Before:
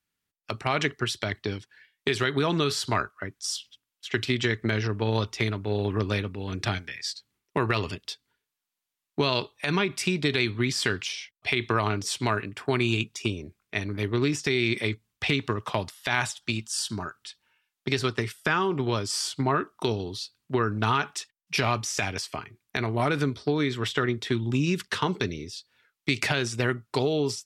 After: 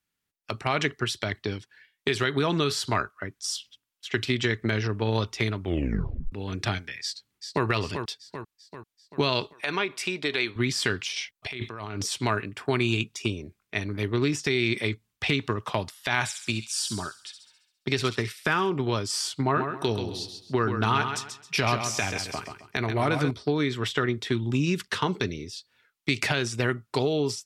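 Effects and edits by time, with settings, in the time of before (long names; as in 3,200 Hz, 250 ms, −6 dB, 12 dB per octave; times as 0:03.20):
0:05.59: tape stop 0.73 s
0:07.02–0:07.66: delay throw 390 ms, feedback 55%, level −7 dB
0:09.53–0:10.56: bass and treble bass −15 dB, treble −4 dB
0:11.16–0:12.12: compressor whose output falls as the input rises −34 dBFS
0:16.14–0:18.70: delay with a high-pass on its return 68 ms, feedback 57%, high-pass 3,800 Hz, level −5.5 dB
0:19.43–0:23.31: repeating echo 134 ms, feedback 29%, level −7 dB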